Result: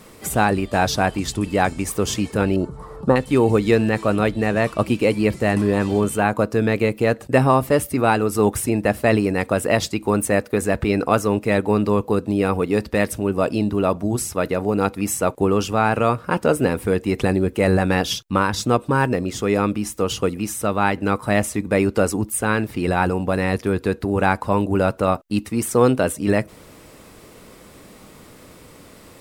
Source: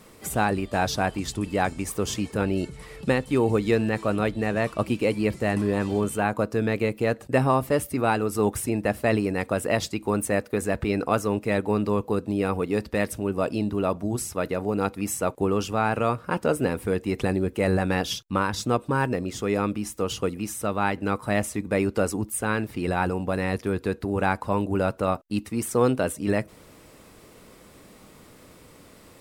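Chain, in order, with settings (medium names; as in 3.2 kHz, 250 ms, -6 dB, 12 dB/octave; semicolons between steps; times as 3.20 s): 2.56–3.16 s: resonant high shelf 1.6 kHz -12.5 dB, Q 3; trim +5.5 dB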